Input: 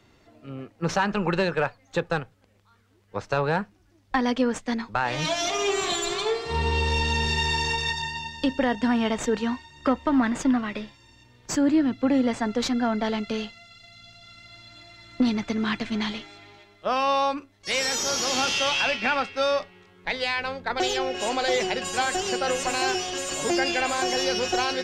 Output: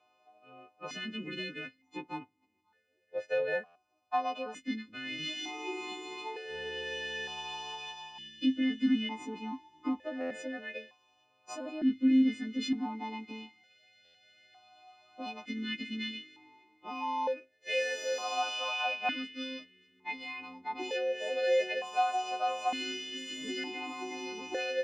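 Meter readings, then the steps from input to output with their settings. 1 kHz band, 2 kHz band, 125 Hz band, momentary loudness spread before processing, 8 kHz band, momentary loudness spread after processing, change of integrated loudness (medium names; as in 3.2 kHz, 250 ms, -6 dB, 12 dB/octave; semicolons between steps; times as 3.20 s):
-8.5 dB, -10.0 dB, under -20 dB, 9 LU, -17.5 dB, 13 LU, -9.0 dB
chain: partials quantised in pitch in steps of 3 st; buffer glitch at 3.65/10.20/14.04 s, samples 512, times 8; stepped vowel filter 1.1 Hz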